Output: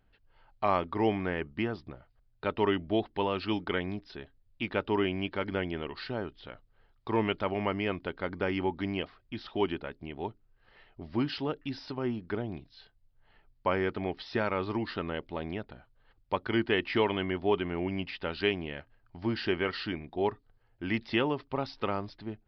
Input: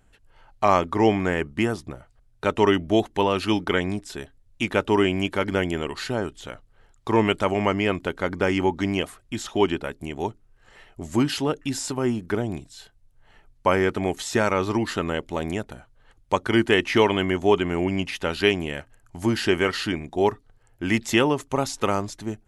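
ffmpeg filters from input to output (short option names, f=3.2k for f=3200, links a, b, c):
-af "aresample=11025,aresample=44100,volume=-8.5dB"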